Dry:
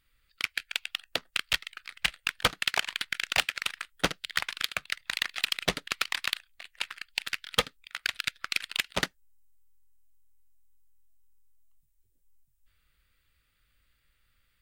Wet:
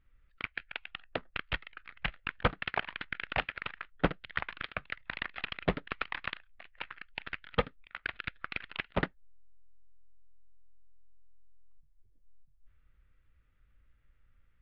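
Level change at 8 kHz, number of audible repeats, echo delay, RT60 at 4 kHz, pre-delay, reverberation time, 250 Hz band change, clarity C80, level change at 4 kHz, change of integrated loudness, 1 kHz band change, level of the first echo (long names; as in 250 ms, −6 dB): below −40 dB, no echo audible, no echo audible, no reverb audible, no reverb audible, no reverb audible, +3.0 dB, no reverb audible, −13.0 dB, −6.5 dB, −1.5 dB, no echo audible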